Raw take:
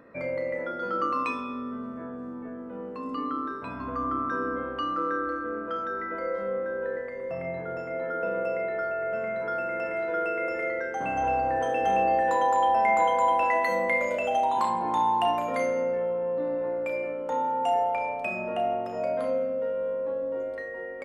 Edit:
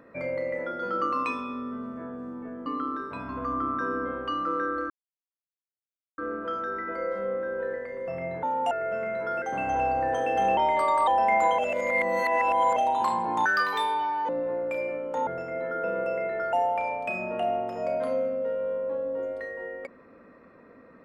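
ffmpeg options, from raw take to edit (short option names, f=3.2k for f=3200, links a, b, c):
-filter_complex "[0:a]asplit=14[a][b][c][d][e][f][g][h][i][j][k][l][m][n];[a]atrim=end=2.662[o];[b]atrim=start=3.168:end=5.41,asetpts=PTS-STARTPTS,afade=t=out:st=2.238:d=0.004:c=hsin,apad=pad_dur=1.28[p];[c]atrim=start=5.41:end=7.662,asetpts=PTS-STARTPTS,afade=t=in:d=0.004:c=hsin[q];[d]atrim=start=17.418:end=17.702[r];[e]atrim=start=8.918:end=9.632[s];[f]atrim=start=10.898:end=12.054[t];[g]atrim=start=12.05:end=12.64,asetpts=PTS-STARTPTS,asetrate=51597,aresample=44100,atrim=end_sample=22238,asetpts=PTS-STARTPTS[u];[h]atrim=start=12.636:end=13.152[v];[i]atrim=start=13.148:end=14.332,asetpts=PTS-STARTPTS,areverse[w];[j]atrim=start=14.328:end=15.024[x];[k]atrim=start=15.02:end=16.44,asetpts=PTS-STARTPTS,asetrate=74970,aresample=44100,atrim=end_sample=36836,asetpts=PTS-STARTPTS[y];[l]atrim=start=16.436:end=17.422[z];[m]atrim=start=7.658:end=8.922[aa];[n]atrim=start=17.698[ab];[p][q]concat=n=2:v=0:a=1[ac];[o][ac]acrossfade=d=0.004:c1=hsin:c2=hsin[ad];[ad][r]acrossfade=d=0.004:c1=hsin:c2=hsin[ae];[ae][s]acrossfade=d=0.004:c1=hsin:c2=hsin[af];[af][t]acrossfade=d=0.004:c1=hsin:c2=hsin[ag];[ag][u]acrossfade=d=0.004:c1=hsin:c2=hsin[ah];[ah][v]acrossfade=d=0.004:c1=hsin:c2=hsin[ai];[ai][w]acrossfade=d=0.004:c1=hsin:c2=hsin[aj];[aj][x]acrossfade=d=0.004:c1=hsin:c2=hsin[ak];[ak][y]acrossfade=d=0.004:c1=hsin:c2=hsin[al];[al][z]acrossfade=d=0.004:c1=hsin:c2=hsin[am];[am][aa]acrossfade=d=0.004:c1=hsin:c2=hsin[an];[an][ab]acrossfade=d=0.004:c1=hsin:c2=hsin"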